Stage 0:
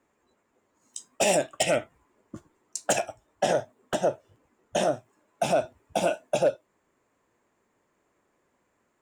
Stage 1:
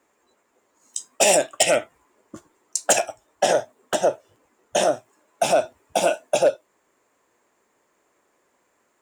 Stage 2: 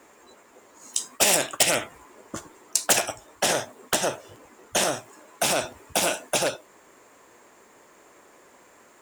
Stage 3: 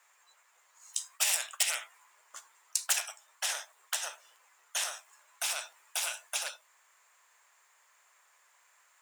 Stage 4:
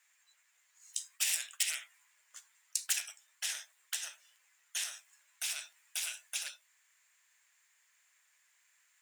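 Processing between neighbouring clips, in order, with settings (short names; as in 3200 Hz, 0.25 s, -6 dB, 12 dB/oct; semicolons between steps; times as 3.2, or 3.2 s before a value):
tone controls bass -10 dB, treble +4 dB; gain +5.5 dB
spectral compressor 2:1; gain +3 dB
Bessel high-pass 1300 Hz, order 4; gain -7.5 dB
band shelf 600 Hz -13 dB 2.5 oct; gain -3.5 dB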